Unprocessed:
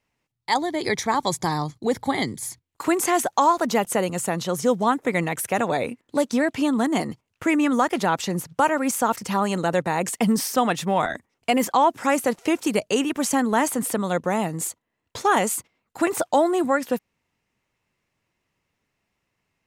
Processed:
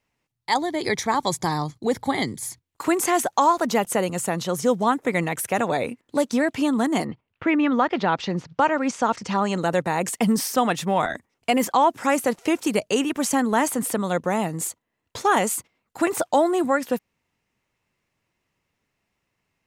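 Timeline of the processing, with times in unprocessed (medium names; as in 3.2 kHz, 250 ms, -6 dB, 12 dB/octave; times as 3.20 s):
7.04–9.60 s: low-pass 3.2 kHz -> 7.6 kHz 24 dB/octave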